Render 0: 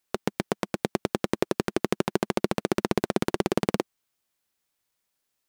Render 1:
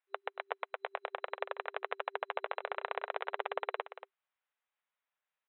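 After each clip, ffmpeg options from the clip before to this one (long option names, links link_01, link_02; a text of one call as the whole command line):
ffmpeg -i in.wav -filter_complex "[0:a]acrossover=split=590 2900:gain=0.112 1 0.0891[link_01][link_02][link_03];[link_01][link_02][link_03]amix=inputs=3:normalize=0,aecho=1:1:232:0.251,afftfilt=real='re*between(b*sr/4096,390,4000)':imag='im*between(b*sr/4096,390,4000)':win_size=4096:overlap=0.75,volume=-3.5dB" out.wav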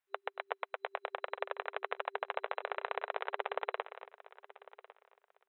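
ffmpeg -i in.wav -af "aecho=1:1:1101|2202:0.119|0.0238" out.wav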